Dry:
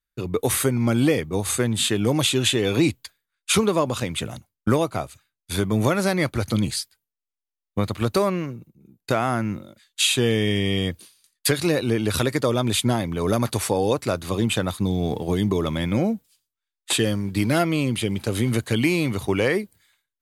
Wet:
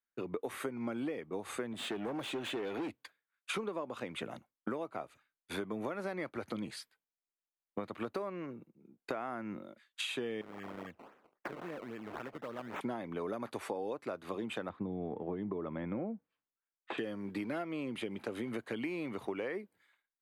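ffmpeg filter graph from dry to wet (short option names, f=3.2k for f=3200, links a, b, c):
-filter_complex "[0:a]asettb=1/sr,asplit=3[a][b][c];[a]atrim=end=1.734[d];[b]atrim=start=1.73:end=3.5,asetpts=PTS-STARTPTS,afade=t=in:d=0.004:c=qsin,afade=t=out:st=1.766:d=0.004:c=qsin,highpass=59,asoftclip=type=hard:threshold=-21dB[e];[c]atrim=start=3.496[f];[d][e]acrossfade=d=0.004:c1=hsin:c2=qsin[g];[g][f]acrossfade=d=0.004:c1=qsin:c2=hsin,asettb=1/sr,asplit=3[h][i][j];[h]atrim=end=10.414[k];[i]atrim=start=10.41:end=12.81,asetpts=PTS-STARTPTS,afade=t=in:d=0.004:c=qsin,afade=t=out:st=2.396:d=0.004:c=qsin,equalizer=f=390:t=o:w=1.1:g=-7.5,acompressor=threshold=-42dB:ratio=2:attack=3.2:release=140:knee=1:detection=peak,acrusher=samples=18:mix=1:aa=0.000001:lfo=1:lforange=18:lforate=3.7[l];[j]atrim=start=12.806[m];[k][l]acrossfade=d=0.004:c1=hsin:c2=qsin[n];[n][m]acrossfade=d=0.004:c1=qsin:c2=hsin,asettb=1/sr,asplit=3[o][p][q];[o]atrim=end=14.694[r];[p]atrim=start=14.69:end=16.98,asetpts=PTS-STARTPTS,afade=t=in:d=0.004:c=qsin,afade=t=out:st=2.286:d=0.004:c=qsin,lowpass=1.8k,equalizer=f=67:w=0.38:g=7[s];[q]atrim=start=16.976[t];[r][s]acrossfade=d=0.004:c1=hsin:c2=qsin[u];[u][t]acrossfade=d=0.004:c1=qsin:c2=hsin,acrossover=split=210 2600:gain=0.0794 1 0.141[v][w][x];[v][w][x]amix=inputs=3:normalize=0,acompressor=threshold=-32dB:ratio=6,volume=-3.5dB"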